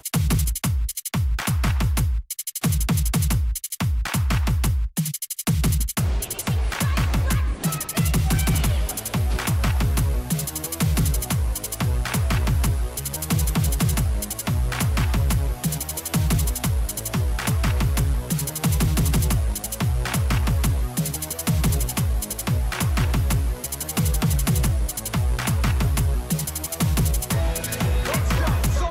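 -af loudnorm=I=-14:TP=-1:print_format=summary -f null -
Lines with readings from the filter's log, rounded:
Input Integrated:    -23.3 LUFS
Input True Peak:     -13.0 dBTP
Input LRA:             0.8 LU
Input Threshold:     -33.3 LUFS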